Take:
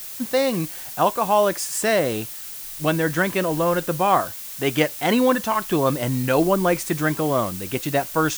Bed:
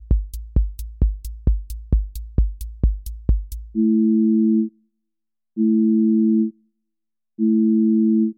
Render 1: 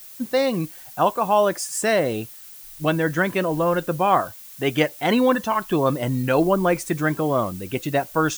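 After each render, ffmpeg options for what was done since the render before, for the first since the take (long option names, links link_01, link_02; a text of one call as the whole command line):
ffmpeg -i in.wav -af "afftdn=noise_reduction=9:noise_floor=-35" out.wav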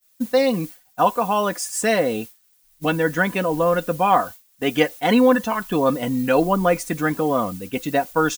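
ffmpeg -i in.wav -af "agate=range=-33dB:threshold=-29dB:ratio=3:detection=peak,aecho=1:1:4.1:0.56" out.wav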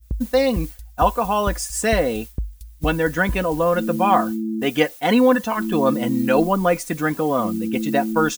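ffmpeg -i in.wav -i bed.wav -filter_complex "[1:a]volume=-8.5dB[link_01];[0:a][link_01]amix=inputs=2:normalize=0" out.wav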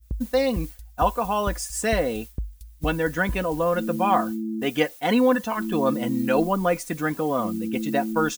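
ffmpeg -i in.wav -af "volume=-4dB" out.wav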